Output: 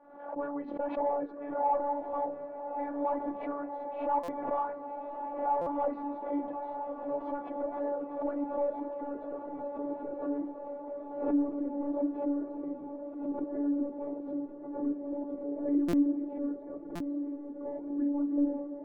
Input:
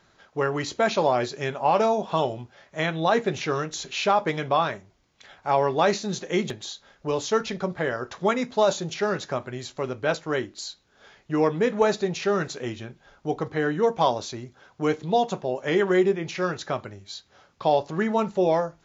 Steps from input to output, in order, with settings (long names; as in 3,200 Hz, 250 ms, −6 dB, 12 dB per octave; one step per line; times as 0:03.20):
band-pass filter 220–2,300 Hz
phases set to zero 287 Hz
soft clipping −21 dBFS, distortion −11 dB
low-pass filter sweep 750 Hz → 360 Hz, 0:06.72–0:10.52
feedback delay with all-pass diffusion 1,126 ms, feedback 73%, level −8.5 dB
flanger 1.9 Hz, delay 3.2 ms, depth 5 ms, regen −77%
dynamic equaliser 610 Hz, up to −6 dB, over −39 dBFS, Q 3.2
buffer that repeats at 0:04.23/0:05.61/0:15.88/0:16.95, samples 256, times 8
background raised ahead of every attack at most 73 dB per second